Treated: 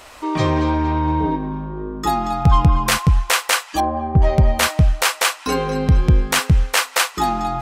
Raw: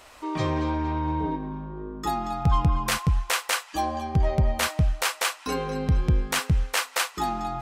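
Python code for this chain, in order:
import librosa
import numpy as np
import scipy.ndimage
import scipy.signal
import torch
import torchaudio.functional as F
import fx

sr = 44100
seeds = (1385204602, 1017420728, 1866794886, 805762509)

y = fx.lowpass(x, sr, hz=1200.0, slope=12, at=(3.8, 4.22))
y = y * librosa.db_to_amplitude(8.0)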